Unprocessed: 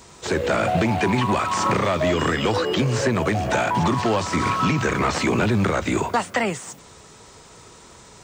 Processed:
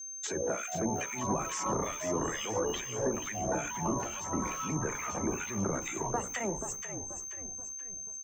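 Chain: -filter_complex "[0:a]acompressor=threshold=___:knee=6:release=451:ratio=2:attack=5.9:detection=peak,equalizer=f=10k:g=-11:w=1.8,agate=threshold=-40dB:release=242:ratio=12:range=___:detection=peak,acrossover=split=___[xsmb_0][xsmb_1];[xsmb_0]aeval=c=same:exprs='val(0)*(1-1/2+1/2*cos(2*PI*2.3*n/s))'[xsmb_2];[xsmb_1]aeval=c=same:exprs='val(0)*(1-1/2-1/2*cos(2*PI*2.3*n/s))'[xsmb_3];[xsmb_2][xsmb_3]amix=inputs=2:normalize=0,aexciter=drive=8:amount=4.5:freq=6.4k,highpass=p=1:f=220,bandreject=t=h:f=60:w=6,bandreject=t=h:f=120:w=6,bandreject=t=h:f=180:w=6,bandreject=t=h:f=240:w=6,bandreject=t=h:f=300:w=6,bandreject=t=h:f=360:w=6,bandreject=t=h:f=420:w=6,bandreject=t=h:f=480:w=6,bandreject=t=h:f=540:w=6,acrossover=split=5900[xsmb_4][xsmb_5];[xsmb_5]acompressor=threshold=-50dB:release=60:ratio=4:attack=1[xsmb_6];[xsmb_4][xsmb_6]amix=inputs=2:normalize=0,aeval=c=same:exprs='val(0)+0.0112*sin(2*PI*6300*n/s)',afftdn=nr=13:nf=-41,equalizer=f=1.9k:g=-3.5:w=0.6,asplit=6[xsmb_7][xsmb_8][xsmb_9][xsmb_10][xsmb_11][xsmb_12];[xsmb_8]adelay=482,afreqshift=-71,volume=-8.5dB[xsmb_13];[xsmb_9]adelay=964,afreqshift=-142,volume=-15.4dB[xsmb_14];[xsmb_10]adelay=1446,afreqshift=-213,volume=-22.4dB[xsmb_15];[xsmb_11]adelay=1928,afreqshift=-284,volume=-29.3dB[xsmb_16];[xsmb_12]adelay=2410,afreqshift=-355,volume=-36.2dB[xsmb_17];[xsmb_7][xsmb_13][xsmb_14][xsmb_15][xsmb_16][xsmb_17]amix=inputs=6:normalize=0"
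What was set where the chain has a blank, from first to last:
-27dB, -20dB, 1400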